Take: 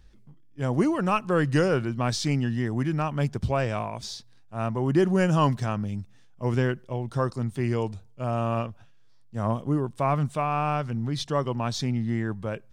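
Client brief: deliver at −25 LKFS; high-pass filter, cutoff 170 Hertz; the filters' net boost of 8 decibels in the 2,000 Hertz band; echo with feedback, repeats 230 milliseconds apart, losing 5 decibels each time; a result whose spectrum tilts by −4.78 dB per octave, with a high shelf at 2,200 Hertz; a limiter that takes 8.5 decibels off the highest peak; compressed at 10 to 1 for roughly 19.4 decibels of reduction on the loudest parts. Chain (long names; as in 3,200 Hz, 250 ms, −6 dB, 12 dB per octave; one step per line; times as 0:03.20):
high-pass filter 170 Hz
parametric band 2,000 Hz +9 dB
high-shelf EQ 2,200 Hz +3 dB
downward compressor 10 to 1, threshold −36 dBFS
brickwall limiter −30 dBFS
repeating echo 230 ms, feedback 56%, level −5 dB
level +16 dB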